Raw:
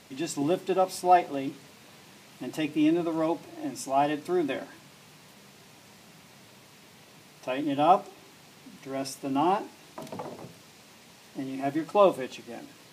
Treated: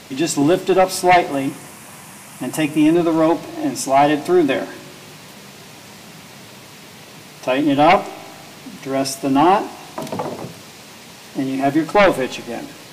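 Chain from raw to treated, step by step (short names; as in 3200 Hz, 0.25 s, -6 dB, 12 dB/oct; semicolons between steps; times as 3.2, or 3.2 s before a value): 1.31–2.95 fifteen-band EQ 400 Hz -7 dB, 1000 Hz +3 dB, 4000 Hz -8 dB, 10000 Hz +9 dB; sine folder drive 9 dB, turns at -7.5 dBFS; resonator 52 Hz, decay 1.9 s, harmonics all, mix 40%; gain +4.5 dB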